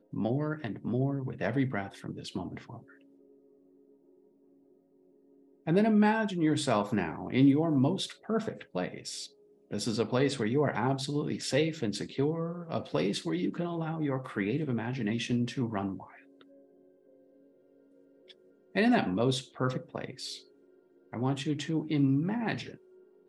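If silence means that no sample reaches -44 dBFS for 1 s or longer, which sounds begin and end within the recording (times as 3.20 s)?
5.67–16.41 s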